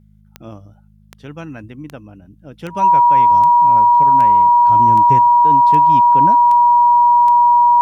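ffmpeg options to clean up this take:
-af "adeclick=t=4,bandreject=f=52:t=h:w=4,bandreject=f=104:t=h:w=4,bandreject=f=156:t=h:w=4,bandreject=f=208:t=h:w=4,bandreject=f=960:w=30"

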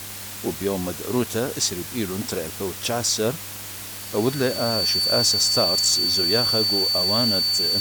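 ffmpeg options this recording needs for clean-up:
-af "bandreject=f=100:t=h:w=4,bandreject=f=200:t=h:w=4,bandreject=f=300:t=h:w=4,bandreject=f=4.5k:w=30,afwtdn=0.018"

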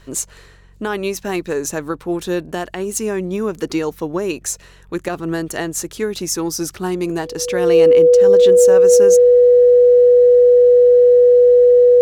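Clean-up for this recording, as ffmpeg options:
-af "bandreject=f=46.2:t=h:w=4,bandreject=f=92.4:t=h:w=4,bandreject=f=138.6:t=h:w=4,bandreject=f=184.8:t=h:w=4,bandreject=f=490:w=30"

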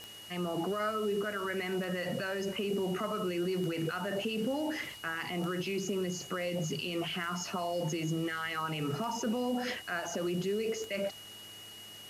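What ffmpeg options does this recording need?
-af "adeclick=t=4,bandreject=f=104.6:t=h:w=4,bandreject=f=209.2:t=h:w=4,bandreject=f=313.8:t=h:w=4,bandreject=f=418.4:t=h:w=4,bandreject=f=2.9k:w=30,afwtdn=0.0022"

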